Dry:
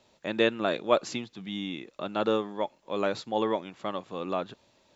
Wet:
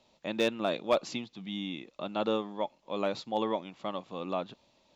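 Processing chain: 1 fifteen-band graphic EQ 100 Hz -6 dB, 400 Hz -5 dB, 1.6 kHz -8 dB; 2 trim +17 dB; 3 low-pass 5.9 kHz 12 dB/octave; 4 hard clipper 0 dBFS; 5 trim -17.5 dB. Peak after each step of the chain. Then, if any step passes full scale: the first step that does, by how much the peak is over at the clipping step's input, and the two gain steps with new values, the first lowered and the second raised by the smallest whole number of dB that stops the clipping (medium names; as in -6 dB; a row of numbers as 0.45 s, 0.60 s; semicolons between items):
-12.0 dBFS, +5.0 dBFS, +5.0 dBFS, 0.0 dBFS, -17.5 dBFS; step 2, 5.0 dB; step 2 +12 dB, step 5 -12.5 dB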